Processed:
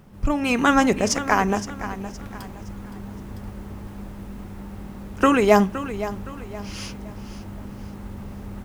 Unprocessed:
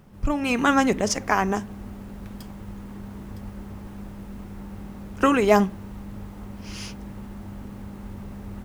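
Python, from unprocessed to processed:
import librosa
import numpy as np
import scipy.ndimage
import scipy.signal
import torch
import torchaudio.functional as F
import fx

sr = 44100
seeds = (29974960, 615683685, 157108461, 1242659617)

y = fx.echo_feedback(x, sr, ms=517, feedback_pct=37, wet_db=-13.0)
y = F.gain(torch.from_numpy(y), 2.0).numpy()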